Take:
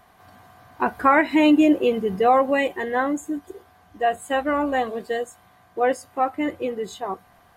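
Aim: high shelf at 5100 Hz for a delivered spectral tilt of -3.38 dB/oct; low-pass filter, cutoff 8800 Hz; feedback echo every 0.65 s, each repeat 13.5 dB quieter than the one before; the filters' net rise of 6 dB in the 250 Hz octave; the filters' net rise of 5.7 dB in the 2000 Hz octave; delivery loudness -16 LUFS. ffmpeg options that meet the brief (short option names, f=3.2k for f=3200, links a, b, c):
-af "lowpass=8.8k,equalizer=f=250:t=o:g=7.5,equalizer=f=2k:t=o:g=7.5,highshelf=f=5.1k:g=-5.5,aecho=1:1:650|1300:0.211|0.0444,volume=1.5dB"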